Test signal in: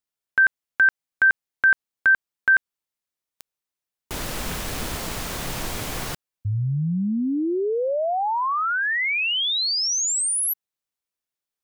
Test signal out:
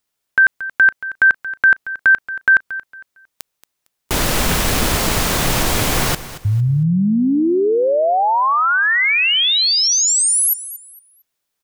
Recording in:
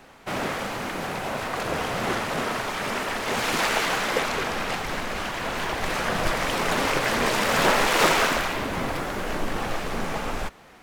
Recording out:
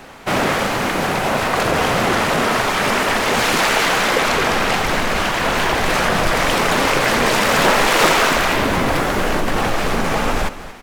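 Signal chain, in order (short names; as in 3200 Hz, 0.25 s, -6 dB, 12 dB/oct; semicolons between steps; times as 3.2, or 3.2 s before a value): in parallel at -1.5 dB: negative-ratio compressor -28 dBFS, ratio -1; on the sum: feedback echo 0.228 s, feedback 27%, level -15 dB; gain +4.5 dB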